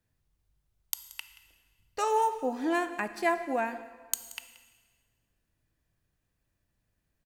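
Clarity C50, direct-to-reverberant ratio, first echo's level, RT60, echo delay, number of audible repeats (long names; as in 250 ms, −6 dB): 11.5 dB, 10.5 dB, −19.0 dB, 1.6 s, 178 ms, 1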